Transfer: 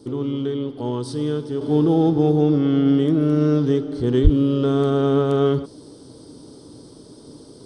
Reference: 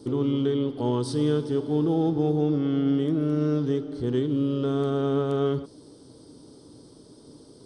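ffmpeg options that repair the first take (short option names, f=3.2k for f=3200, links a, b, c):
-filter_complex "[0:a]asplit=3[a][b][c];[a]afade=t=out:st=4.23:d=0.02[d];[b]highpass=f=140:w=0.5412,highpass=f=140:w=1.3066,afade=t=in:st=4.23:d=0.02,afade=t=out:st=4.35:d=0.02[e];[c]afade=t=in:st=4.35:d=0.02[f];[d][e][f]amix=inputs=3:normalize=0,asetnsamples=n=441:p=0,asendcmd='1.61 volume volume -6.5dB',volume=0dB"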